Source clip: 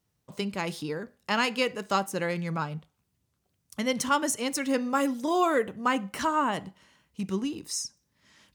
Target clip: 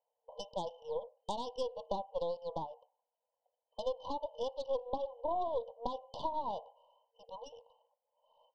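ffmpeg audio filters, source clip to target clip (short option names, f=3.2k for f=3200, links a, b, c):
-af "afftfilt=real='re*between(b*sr/4096,460,3100)':imag='im*between(b*sr/4096,460,3100)':win_size=4096:overlap=0.75,acompressor=threshold=-34dB:ratio=5,aeval=exprs='0.0944*(cos(1*acos(clip(val(0)/0.0944,-1,1)))-cos(1*PI/2))+0.0188*(cos(4*acos(clip(val(0)/0.0944,-1,1)))-cos(4*PI/2))+0.00376*(cos(5*acos(clip(val(0)/0.0944,-1,1)))-cos(5*PI/2))':c=same,asuperstop=centerf=1800:order=20:qfactor=0.82,volume=1dB"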